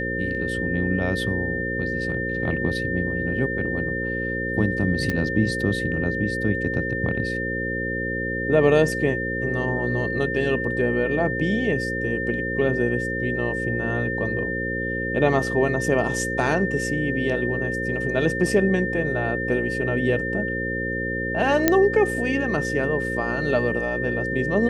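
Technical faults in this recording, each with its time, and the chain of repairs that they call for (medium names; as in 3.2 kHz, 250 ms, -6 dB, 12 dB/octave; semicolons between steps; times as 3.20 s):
buzz 60 Hz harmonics 9 -29 dBFS
whine 1.8 kHz -27 dBFS
5.10 s: pop -13 dBFS
21.68 s: pop -2 dBFS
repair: de-click; de-hum 60 Hz, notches 9; band-stop 1.8 kHz, Q 30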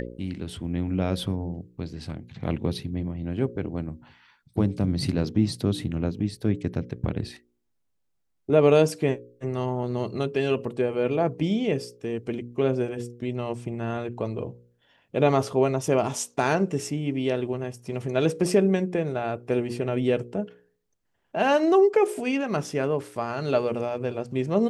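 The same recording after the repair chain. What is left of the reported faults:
nothing left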